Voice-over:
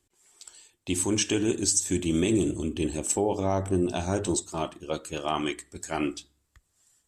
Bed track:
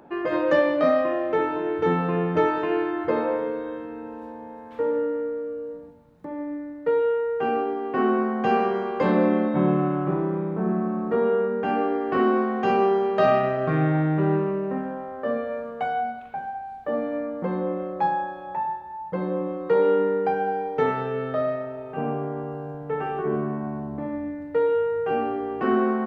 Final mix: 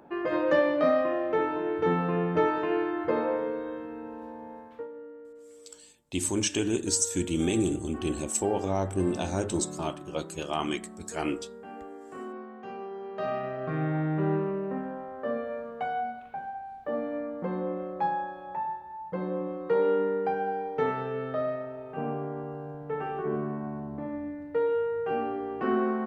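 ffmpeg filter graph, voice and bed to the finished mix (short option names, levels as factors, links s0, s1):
-filter_complex "[0:a]adelay=5250,volume=0.794[s0];[1:a]volume=3.35,afade=t=out:st=4.57:d=0.31:silence=0.16788,afade=t=in:st=12.9:d=1.37:silence=0.199526[s1];[s0][s1]amix=inputs=2:normalize=0"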